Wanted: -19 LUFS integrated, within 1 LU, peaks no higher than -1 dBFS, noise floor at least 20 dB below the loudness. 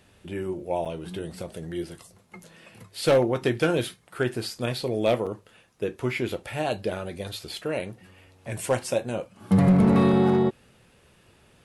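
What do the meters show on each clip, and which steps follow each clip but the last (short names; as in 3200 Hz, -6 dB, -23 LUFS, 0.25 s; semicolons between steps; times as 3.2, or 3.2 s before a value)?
clipped 0.7%; flat tops at -13.5 dBFS; dropouts 2; longest dropout 6.4 ms; loudness -26.0 LUFS; peak -13.5 dBFS; loudness target -19.0 LUFS
-> clip repair -13.5 dBFS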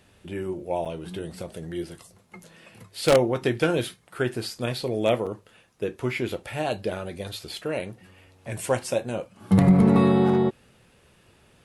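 clipped 0.0%; dropouts 2; longest dropout 6.4 ms
-> interpolate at 0.85/5.26, 6.4 ms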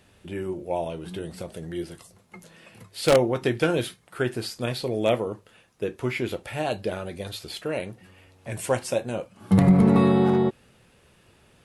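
dropouts 0; loudness -25.0 LUFS; peak -4.5 dBFS; loudness target -19.0 LUFS
-> gain +6 dB; limiter -1 dBFS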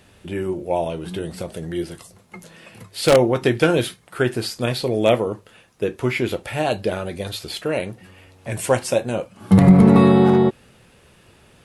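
loudness -19.5 LUFS; peak -1.0 dBFS; noise floor -53 dBFS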